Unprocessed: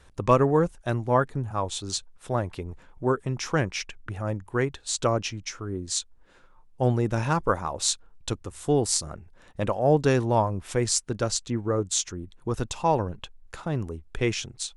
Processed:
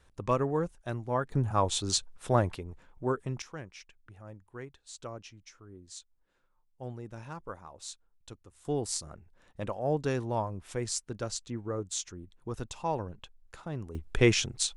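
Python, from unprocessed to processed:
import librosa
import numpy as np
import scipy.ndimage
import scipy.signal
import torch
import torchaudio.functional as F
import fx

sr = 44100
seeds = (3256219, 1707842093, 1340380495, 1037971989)

y = fx.gain(x, sr, db=fx.steps((0.0, -8.5), (1.32, 1.5), (2.56, -6.0), (3.42, -18.0), (8.65, -9.0), (13.95, 3.0)))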